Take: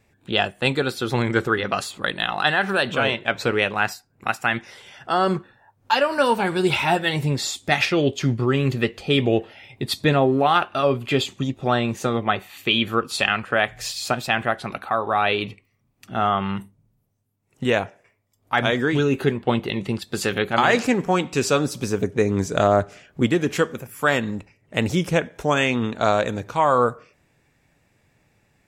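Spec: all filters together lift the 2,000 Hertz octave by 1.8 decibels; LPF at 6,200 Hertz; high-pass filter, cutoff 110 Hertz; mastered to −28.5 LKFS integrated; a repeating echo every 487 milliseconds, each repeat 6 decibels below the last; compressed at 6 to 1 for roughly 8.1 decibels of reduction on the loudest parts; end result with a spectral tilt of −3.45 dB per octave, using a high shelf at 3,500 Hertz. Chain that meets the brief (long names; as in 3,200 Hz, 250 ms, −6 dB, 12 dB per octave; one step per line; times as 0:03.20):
high-pass filter 110 Hz
low-pass filter 6,200 Hz
parametric band 2,000 Hz +3.5 dB
high-shelf EQ 3,500 Hz −3.5 dB
downward compressor 6 to 1, threshold −22 dBFS
repeating echo 487 ms, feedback 50%, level −6 dB
level −1.5 dB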